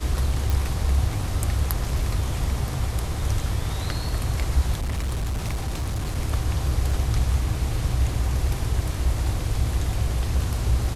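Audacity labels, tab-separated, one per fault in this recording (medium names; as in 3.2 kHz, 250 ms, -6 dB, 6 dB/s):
0.500000	0.500000	pop
4.780000	6.180000	clipped -22.5 dBFS
6.910000	6.910000	dropout 3.1 ms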